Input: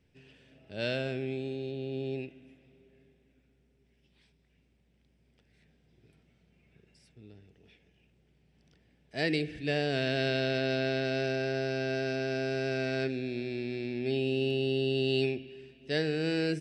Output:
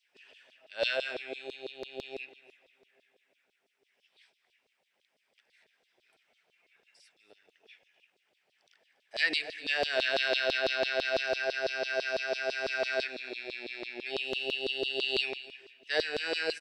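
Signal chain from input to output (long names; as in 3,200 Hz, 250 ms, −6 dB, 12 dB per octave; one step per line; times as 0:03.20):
single-tap delay 248 ms −16 dB
auto-filter high-pass saw down 6 Hz 500–4,300 Hz
level +1.5 dB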